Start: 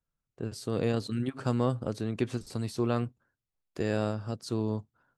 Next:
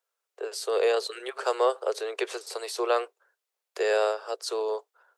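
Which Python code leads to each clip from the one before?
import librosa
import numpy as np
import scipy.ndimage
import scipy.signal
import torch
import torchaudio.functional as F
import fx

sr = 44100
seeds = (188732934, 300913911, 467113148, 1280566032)

y = scipy.signal.sosfilt(scipy.signal.butter(12, 400.0, 'highpass', fs=sr, output='sos'), x)
y = F.gain(torch.from_numpy(y), 8.5).numpy()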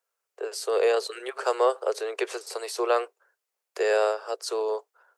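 y = fx.peak_eq(x, sr, hz=3600.0, db=-4.5, octaves=0.51)
y = F.gain(torch.from_numpy(y), 1.5).numpy()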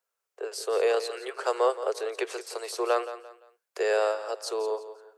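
y = fx.echo_feedback(x, sr, ms=172, feedback_pct=32, wet_db=-13.0)
y = F.gain(torch.from_numpy(y), -2.0).numpy()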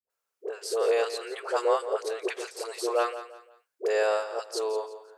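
y = fx.dispersion(x, sr, late='highs', ms=100.0, hz=500.0)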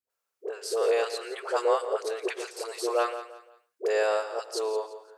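y = x + 10.0 ** (-17.5 / 20.0) * np.pad(x, (int(113 * sr / 1000.0), 0))[:len(x)]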